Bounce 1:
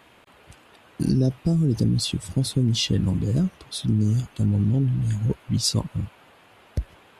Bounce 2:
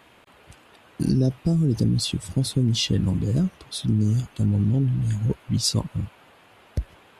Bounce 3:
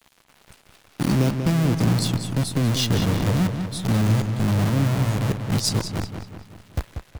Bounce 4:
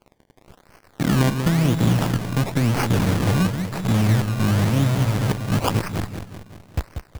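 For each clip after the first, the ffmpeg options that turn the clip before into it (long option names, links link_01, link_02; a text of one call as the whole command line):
ffmpeg -i in.wav -af anull out.wav
ffmpeg -i in.wav -filter_complex "[0:a]acrossover=split=4600[link_01][link_02];[link_01]acrusher=bits=5:dc=4:mix=0:aa=0.000001[link_03];[link_03][link_02]amix=inputs=2:normalize=0,asplit=2[link_04][link_05];[link_05]adelay=188,lowpass=frequency=4300:poles=1,volume=-7dB,asplit=2[link_06][link_07];[link_07]adelay=188,lowpass=frequency=4300:poles=1,volume=0.53,asplit=2[link_08][link_09];[link_09]adelay=188,lowpass=frequency=4300:poles=1,volume=0.53,asplit=2[link_10][link_11];[link_11]adelay=188,lowpass=frequency=4300:poles=1,volume=0.53,asplit=2[link_12][link_13];[link_13]adelay=188,lowpass=frequency=4300:poles=1,volume=0.53,asplit=2[link_14][link_15];[link_15]adelay=188,lowpass=frequency=4300:poles=1,volume=0.53[link_16];[link_04][link_06][link_08][link_10][link_12][link_14][link_16]amix=inputs=7:normalize=0" out.wav
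ffmpeg -i in.wav -af "acrusher=samples=23:mix=1:aa=0.000001:lfo=1:lforange=23:lforate=0.97,volume=1.5dB" out.wav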